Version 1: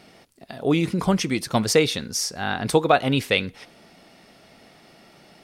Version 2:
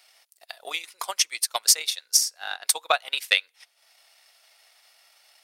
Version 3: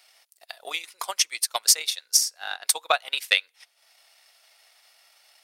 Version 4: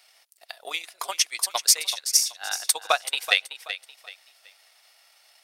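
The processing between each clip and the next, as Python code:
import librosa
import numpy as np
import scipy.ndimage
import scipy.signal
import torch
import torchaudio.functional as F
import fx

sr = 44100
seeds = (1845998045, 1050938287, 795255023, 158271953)

y1 = scipy.signal.sosfilt(scipy.signal.butter(4, 620.0, 'highpass', fs=sr, output='sos'), x)
y1 = fx.tilt_eq(y1, sr, slope=4.0)
y1 = fx.transient(y1, sr, attack_db=10, sustain_db=-9)
y1 = F.gain(torch.from_numpy(y1), -10.5).numpy()
y2 = y1
y3 = fx.echo_feedback(y2, sr, ms=379, feedback_pct=31, wet_db=-12)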